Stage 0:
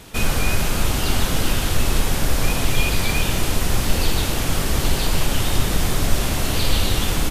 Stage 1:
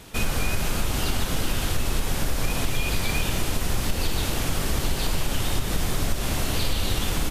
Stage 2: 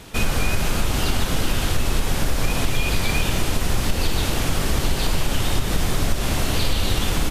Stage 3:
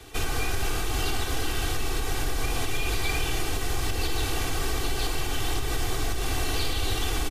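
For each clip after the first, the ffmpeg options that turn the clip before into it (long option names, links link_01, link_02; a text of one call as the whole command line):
ffmpeg -i in.wav -af "acompressor=threshold=-15dB:ratio=6,volume=-3dB" out.wav
ffmpeg -i in.wav -af "highshelf=frequency=8900:gain=-4.5,volume=4dB" out.wav
ffmpeg -i in.wav -filter_complex "[0:a]aecho=1:1:2.6:0.84,acrossover=split=110|420|3800[link_01][link_02][link_03][link_04];[link_01]alimiter=limit=-15.5dB:level=0:latency=1:release=16[link_05];[link_02]asoftclip=type=hard:threshold=-29dB[link_06];[link_05][link_06][link_03][link_04]amix=inputs=4:normalize=0,volume=-7dB" out.wav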